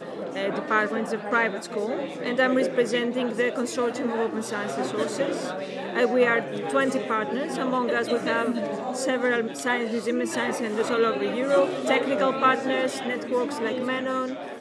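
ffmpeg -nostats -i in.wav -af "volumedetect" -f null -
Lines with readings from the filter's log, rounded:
mean_volume: -25.3 dB
max_volume: -7.1 dB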